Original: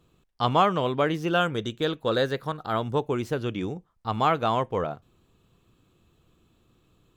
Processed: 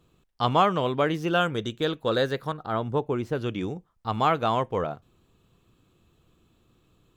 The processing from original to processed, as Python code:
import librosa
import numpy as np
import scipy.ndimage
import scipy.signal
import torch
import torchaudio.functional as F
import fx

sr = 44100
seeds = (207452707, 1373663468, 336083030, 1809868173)

y = fx.high_shelf(x, sr, hz=2700.0, db=-9.5, at=(2.53, 3.35))